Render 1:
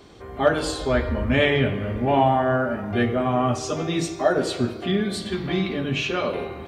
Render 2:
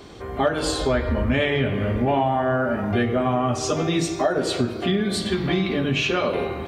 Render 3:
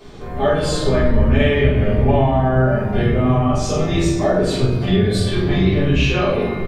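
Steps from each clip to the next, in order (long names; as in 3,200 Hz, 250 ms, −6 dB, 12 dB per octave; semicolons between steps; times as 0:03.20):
downward compressor 4 to 1, threshold −24 dBFS, peak gain reduction 10.5 dB; level +5.5 dB
sub-octave generator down 1 octave, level 0 dB; double-tracking delay 44 ms −6.5 dB; rectangular room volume 78 cubic metres, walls mixed, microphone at 1.5 metres; level −5.5 dB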